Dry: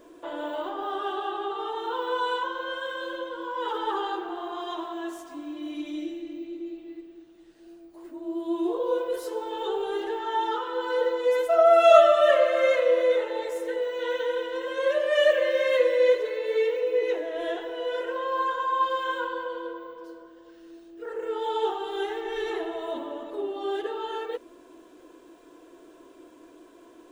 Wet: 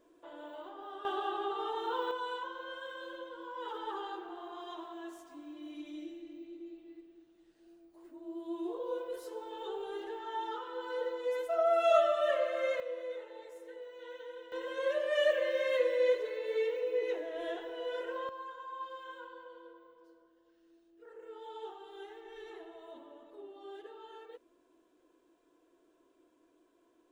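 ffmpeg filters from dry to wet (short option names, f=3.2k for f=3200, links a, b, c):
-af "asetnsamples=n=441:p=0,asendcmd='1.05 volume volume -4.5dB;2.11 volume volume -11dB;12.8 volume volume -18.5dB;14.52 volume volume -8dB;18.29 volume volume -18dB',volume=-14.5dB"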